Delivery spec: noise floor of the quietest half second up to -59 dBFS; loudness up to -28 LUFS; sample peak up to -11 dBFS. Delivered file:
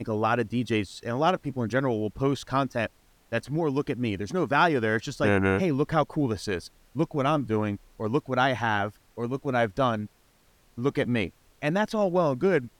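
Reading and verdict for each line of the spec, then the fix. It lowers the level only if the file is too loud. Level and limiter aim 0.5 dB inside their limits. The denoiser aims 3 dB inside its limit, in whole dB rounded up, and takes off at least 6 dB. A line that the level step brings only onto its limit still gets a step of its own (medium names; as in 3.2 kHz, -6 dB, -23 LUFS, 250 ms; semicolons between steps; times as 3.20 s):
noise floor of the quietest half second -62 dBFS: pass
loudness -27.0 LUFS: fail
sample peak -9.5 dBFS: fail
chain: trim -1.5 dB; peak limiter -11.5 dBFS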